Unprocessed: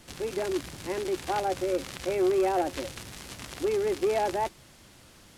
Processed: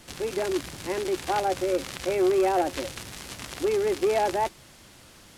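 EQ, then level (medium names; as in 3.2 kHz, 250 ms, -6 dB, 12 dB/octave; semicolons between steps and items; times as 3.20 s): bass shelf 370 Hz -2.5 dB; +3.5 dB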